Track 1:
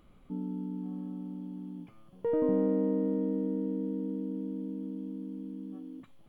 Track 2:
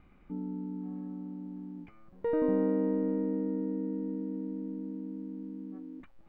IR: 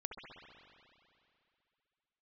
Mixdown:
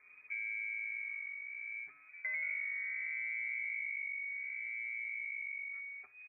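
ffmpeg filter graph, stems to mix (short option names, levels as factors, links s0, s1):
-filter_complex "[0:a]bandreject=f=1100:w=17,asplit=2[s0][s1];[s1]adelay=5.8,afreqshift=-0.66[s2];[s0][s2]amix=inputs=2:normalize=1,volume=1.26[s3];[1:a]volume=-1,adelay=9.1,volume=0.282[s4];[s3][s4]amix=inputs=2:normalize=0,lowpass=f=2100:t=q:w=0.5098,lowpass=f=2100:t=q:w=0.6013,lowpass=f=2100:t=q:w=0.9,lowpass=f=2100:t=q:w=2.563,afreqshift=-2500,acompressor=threshold=0.0112:ratio=3"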